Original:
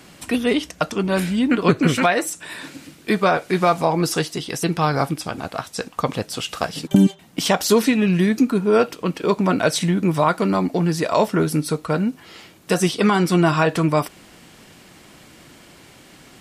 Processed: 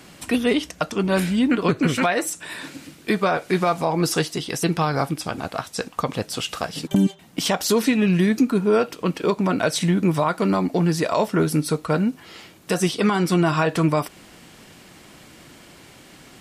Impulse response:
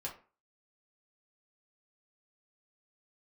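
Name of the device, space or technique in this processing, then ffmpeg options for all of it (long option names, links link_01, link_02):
clipper into limiter: -af "asoftclip=type=hard:threshold=-5dB,alimiter=limit=-9.5dB:level=0:latency=1:release=212"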